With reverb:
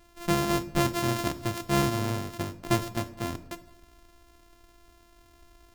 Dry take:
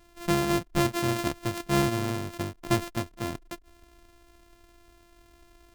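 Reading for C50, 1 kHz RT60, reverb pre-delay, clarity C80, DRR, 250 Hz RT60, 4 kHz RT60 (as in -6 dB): 14.5 dB, 0.70 s, 15 ms, 17.5 dB, 11.5 dB, 0.90 s, 0.55 s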